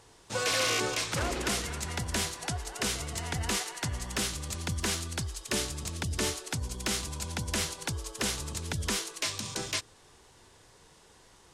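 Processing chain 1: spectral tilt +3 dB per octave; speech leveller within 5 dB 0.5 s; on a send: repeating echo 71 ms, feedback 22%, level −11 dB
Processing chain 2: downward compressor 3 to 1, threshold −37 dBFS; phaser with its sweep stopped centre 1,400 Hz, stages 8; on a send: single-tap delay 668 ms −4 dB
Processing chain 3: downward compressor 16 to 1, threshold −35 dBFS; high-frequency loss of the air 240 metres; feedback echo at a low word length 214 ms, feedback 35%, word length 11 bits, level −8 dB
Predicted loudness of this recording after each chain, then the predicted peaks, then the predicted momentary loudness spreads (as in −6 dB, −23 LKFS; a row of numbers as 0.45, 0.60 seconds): −26.0, −41.0, −42.0 LKFS; −10.0, −24.0, −26.5 dBFS; 4, 8, 17 LU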